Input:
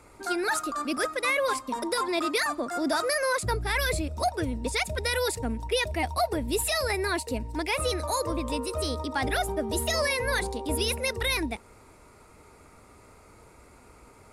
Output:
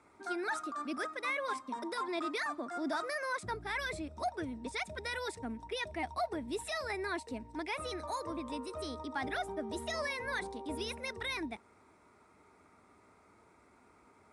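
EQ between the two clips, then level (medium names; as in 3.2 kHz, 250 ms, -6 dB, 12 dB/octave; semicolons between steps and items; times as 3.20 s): cabinet simulation 120–8000 Hz, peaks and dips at 130 Hz -9 dB, 510 Hz -7 dB, 2.8 kHz -6 dB, 4.6 kHz -8 dB, 7 kHz -9 dB; -7.5 dB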